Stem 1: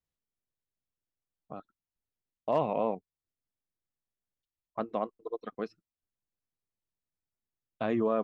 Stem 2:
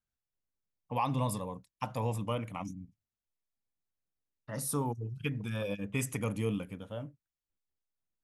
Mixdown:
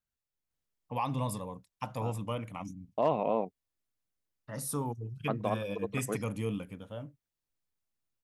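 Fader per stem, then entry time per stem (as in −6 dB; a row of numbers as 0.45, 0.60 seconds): 0.0, −1.5 decibels; 0.50, 0.00 seconds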